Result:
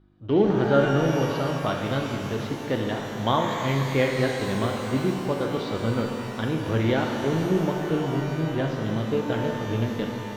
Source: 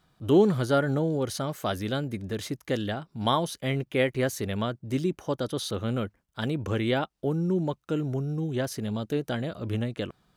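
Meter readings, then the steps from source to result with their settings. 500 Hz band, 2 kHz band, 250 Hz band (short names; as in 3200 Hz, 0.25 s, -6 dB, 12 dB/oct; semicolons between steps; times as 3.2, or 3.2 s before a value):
+3.5 dB, +5.0 dB, +3.0 dB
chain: AGC gain up to 4 dB; buzz 50 Hz, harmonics 7, -52 dBFS; in parallel at -6 dB: sample gate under -23.5 dBFS; on the sum: Bessel low-pass 2900 Hz, order 8; shimmer reverb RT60 2.8 s, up +12 st, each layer -8 dB, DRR 1 dB; gain -6 dB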